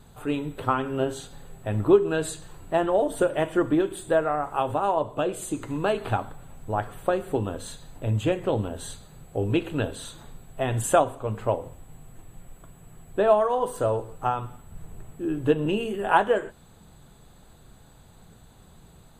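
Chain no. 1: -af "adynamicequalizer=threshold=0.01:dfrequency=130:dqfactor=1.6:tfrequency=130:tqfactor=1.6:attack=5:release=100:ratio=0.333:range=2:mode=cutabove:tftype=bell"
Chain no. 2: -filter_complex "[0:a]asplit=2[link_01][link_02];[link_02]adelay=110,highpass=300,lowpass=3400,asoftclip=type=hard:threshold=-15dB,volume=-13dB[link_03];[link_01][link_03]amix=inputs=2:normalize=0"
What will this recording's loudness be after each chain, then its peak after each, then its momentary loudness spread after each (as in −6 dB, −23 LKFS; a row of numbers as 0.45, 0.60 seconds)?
−26.0, −26.0 LKFS; −6.0, −6.0 dBFS; 16, 16 LU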